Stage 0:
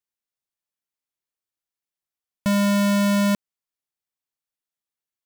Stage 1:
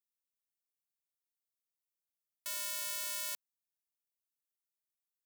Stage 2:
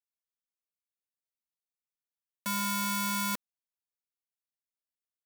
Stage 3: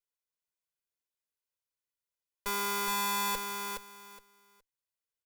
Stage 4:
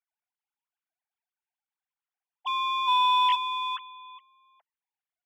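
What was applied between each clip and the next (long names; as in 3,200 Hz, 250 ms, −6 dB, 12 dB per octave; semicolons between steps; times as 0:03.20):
high-pass filter 570 Hz 12 dB per octave; first difference; level −5.5 dB
comb filter 4.1 ms, depth 96%; leveller curve on the samples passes 5; level −2 dB
lower of the sound and its delayed copy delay 2 ms; repeating echo 417 ms, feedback 20%, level −5 dB
three sine waves on the formant tracks; in parallel at −12 dB: hard clipping −36.5 dBFS, distortion −6 dB; on the sum: one half of a high-frequency compander decoder only; level +7 dB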